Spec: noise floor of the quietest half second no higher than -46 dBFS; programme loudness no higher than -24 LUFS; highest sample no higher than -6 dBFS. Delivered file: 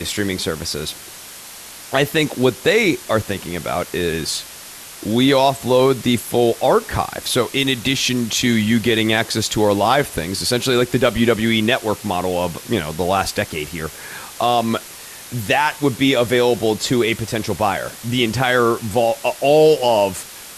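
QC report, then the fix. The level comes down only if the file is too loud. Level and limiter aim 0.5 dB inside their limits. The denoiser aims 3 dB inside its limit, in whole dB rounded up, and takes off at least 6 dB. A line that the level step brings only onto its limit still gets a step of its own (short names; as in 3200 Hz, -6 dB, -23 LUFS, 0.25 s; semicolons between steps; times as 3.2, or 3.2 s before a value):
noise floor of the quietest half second -37 dBFS: fail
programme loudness -18.0 LUFS: fail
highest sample -4.0 dBFS: fail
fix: denoiser 6 dB, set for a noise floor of -37 dBFS; gain -6.5 dB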